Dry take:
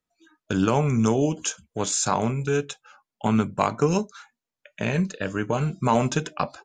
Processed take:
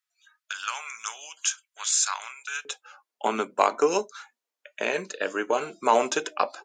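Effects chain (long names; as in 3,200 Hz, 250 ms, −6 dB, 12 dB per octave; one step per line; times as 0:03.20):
high-pass filter 1,300 Hz 24 dB per octave, from 0:02.65 350 Hz
level +2 dB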